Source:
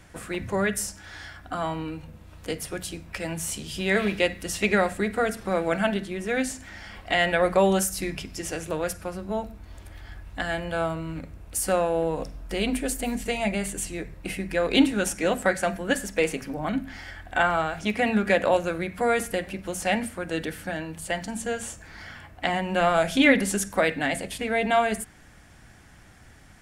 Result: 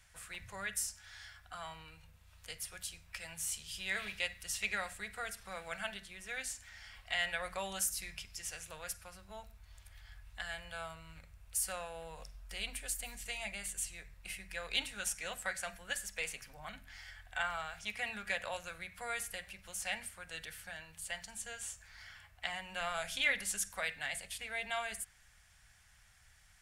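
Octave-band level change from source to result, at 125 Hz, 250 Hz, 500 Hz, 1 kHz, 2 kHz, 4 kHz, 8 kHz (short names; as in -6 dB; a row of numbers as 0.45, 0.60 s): -21.5, -29.5, -22.5, -16.5, -10.5, -8.0, -6.5 dB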